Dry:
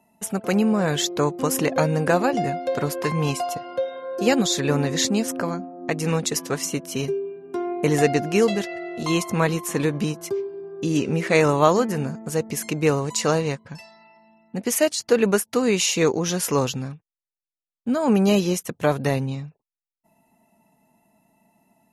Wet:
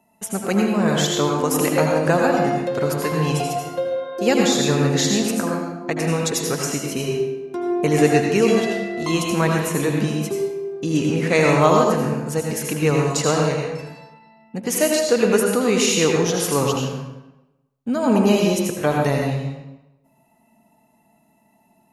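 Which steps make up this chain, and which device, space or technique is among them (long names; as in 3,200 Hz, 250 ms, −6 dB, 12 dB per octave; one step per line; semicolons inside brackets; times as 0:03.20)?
bathroom (convolution reverb RT60 1.0 s, pre-delay 74 ms, DRR 0 dB)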